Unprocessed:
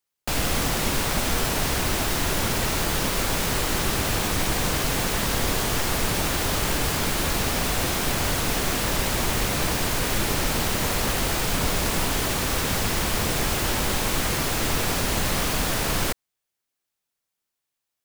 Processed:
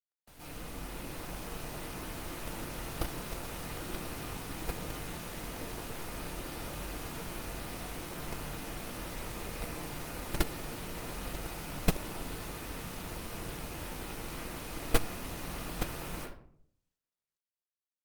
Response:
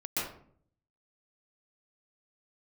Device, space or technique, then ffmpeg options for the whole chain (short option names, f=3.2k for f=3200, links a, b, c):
speakerphone in a meeting room: -filter_complex "[1:a]atrim=start_sample=2205[a];[0:a][a]afir=irnorm=-1:irlink=0,dynaudnorm=f=150:g=13:m=15.5dB,agate=range=-36dB:threshold=-6dB:ratio=16:detection=peak,volume=11dB" -ar 48000 -c:a libopus -b:a 32k